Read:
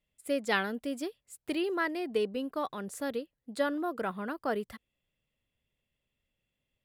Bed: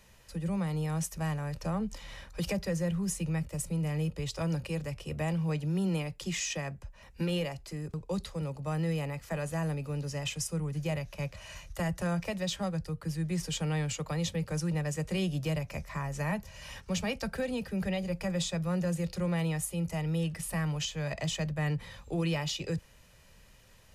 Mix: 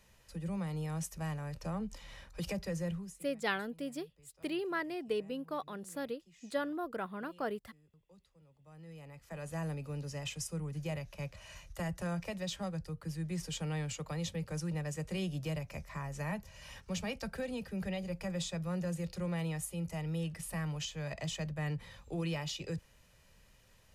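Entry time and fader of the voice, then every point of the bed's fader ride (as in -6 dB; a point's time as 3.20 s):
2.95 s, -5.0 dB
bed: 2.93 s -5.5 dB
3.29 s -29 dB
8.46 s -29 dB
9.57 s -5.5 dB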